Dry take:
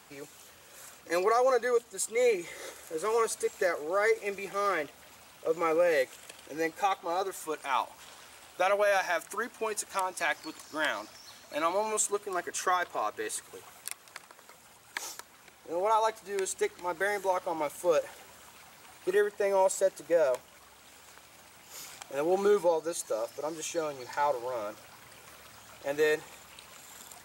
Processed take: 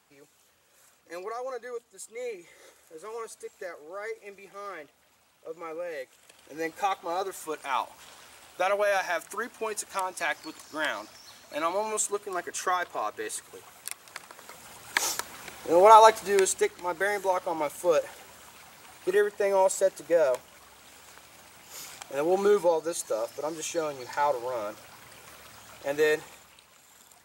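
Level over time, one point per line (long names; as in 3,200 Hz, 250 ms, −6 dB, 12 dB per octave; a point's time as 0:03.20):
0:06.08 −10.5 dB
0:06.75 +0.5 dB
0:13.74 +0.5 dB
0:15.12 +12 dB
0:16.27 +12 dB
0:16.72 +2.5 dB
0:26.22 +2.5 dB
0:26.65 −6.5 dB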